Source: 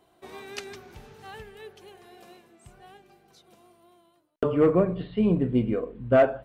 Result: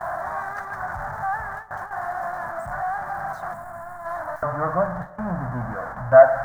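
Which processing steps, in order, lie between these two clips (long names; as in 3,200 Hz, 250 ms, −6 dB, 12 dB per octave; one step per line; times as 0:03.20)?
converter with a step at zero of −26.5 dBFS
drawn EQ curve 140 Hz 0 dB, 430 Hz −20 dB, 640 Hz +10 dB, 1,700 Hz +9 dB, 2,600 Hz −28 dB, 6,300 Hz −17 dB
noise gate with hold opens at −20 dBFS
gain on a spectral selection 0:03.53–0:04.06, 290–6,700 Hz −8 dB
on a send: convolution reverb RT60 2.9 s, pre-delay 78 ms, DRR 19 dB
on the sum: level −2 dB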